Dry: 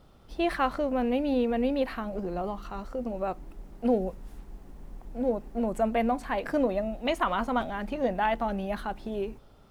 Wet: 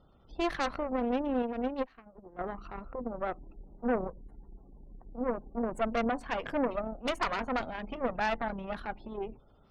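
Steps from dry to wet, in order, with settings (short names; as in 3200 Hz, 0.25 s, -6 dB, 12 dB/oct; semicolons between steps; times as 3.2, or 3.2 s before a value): spectral gate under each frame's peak -30 dB strong; added harmonics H 6 -13 dB, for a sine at -12.5 dBFS; 1.42–2.39 upward expander 2.5:1, over -35 dBFS; gain -5.5 dB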